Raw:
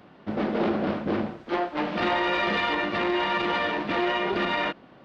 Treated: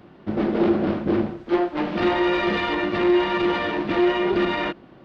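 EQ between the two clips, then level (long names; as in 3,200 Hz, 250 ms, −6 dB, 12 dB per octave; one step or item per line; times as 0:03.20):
low-shelf EQ 170 Hz +9 dB
parametric band 350 Hz +8 dB 0.26 octaves
0.0 dB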